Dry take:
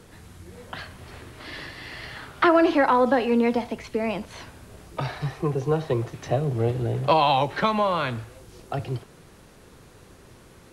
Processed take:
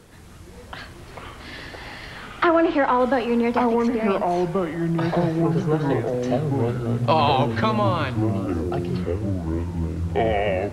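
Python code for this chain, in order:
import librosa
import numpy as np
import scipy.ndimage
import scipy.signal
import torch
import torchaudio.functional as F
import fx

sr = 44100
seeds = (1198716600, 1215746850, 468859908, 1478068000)

y = fx.env_lowpass_down(x, sr, base_hz=2700.0, full_db=-14.0, at=(2.23, 3.0))
y = fx.echo_pitch(y, sr, ms=139, semitones=-6, count=3, db_per_echo=-3.0)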